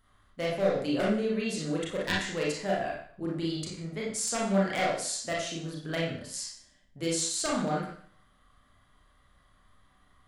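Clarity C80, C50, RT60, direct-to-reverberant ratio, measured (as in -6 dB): 7.5 dB, 2.0 dB, 0.55 s, -4.5 dB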